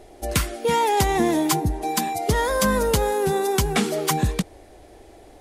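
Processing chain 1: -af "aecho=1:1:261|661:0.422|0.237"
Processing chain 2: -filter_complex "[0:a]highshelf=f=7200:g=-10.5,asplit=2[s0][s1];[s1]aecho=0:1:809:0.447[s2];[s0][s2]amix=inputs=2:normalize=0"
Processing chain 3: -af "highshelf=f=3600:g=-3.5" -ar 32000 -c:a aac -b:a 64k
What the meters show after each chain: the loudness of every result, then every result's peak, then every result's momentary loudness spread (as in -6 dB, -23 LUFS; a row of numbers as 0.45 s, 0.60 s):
-21.5 LUFS, -22.5 LUFS, -22.5 LUFS; -6.5 dBFS, -7.0 dBFS, -8.0 dBFS; 9 LU, 10 LU, 5 LU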